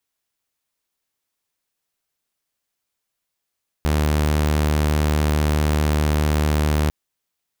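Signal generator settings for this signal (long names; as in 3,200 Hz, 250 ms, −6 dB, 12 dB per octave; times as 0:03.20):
tone saw 75.4 Hz −14 dBFS 3.05 s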